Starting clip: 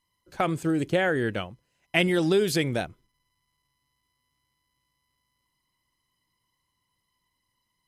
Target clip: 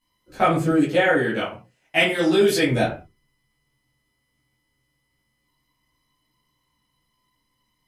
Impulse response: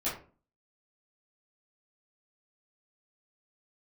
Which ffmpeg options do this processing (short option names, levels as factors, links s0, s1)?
-filter_complex "[0:a]asettb=1/sr,asplit=3[s0][s1][s2];[s0]atrim=end=0.694[s3];[s1]atrim=start=0.69:end=2.69,asetpts=PTS-STARTPTS,afade=t=in:d=0.004:c=qsin,afade=t=out:st=1.996:d=0.004:c=qsin,lowshelf=f=270:g=-9.5[s4];[s2]atrim=start=2.686[s5];[s3][s4]acrossfade=d=0.004:c1=hsin:c2=qsin[s6];[s6][s5]acrossfade=d=0.004:c1=qsin:c2=hsin[s7];[1:a]atrim=start_sample=2205,afade=t=out:st=0.26:d=0.01,atrim=end_sample=11907[s8];[s7][s8]afir=irnorm=-1:irlink=0,volume=1.12"